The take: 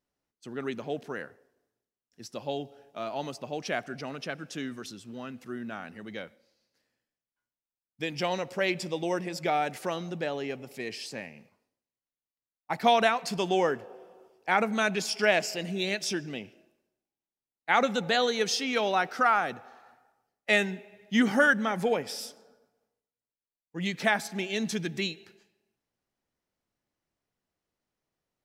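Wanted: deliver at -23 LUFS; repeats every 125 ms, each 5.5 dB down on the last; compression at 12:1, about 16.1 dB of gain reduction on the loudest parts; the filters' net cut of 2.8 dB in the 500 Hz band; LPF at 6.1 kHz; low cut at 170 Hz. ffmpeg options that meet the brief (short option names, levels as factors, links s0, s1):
-af "highpass=170,lowpass=6100,equalizer=f=500:t=o:g=-3.5,acompressor=threshold=0.0178:ratio=12,aecho=1:1:125|250|375|500|625|750|875:0.531|0.281|0.149|0.079|0.0419|0.0222|0.0118,volume=6.68"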